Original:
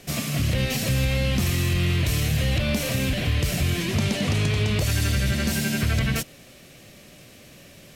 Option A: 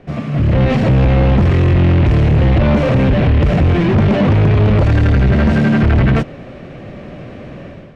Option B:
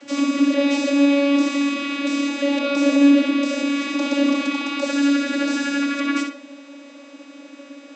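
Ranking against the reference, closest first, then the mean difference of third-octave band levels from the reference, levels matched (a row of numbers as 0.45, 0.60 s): A, B; 10.5, 14.5 dB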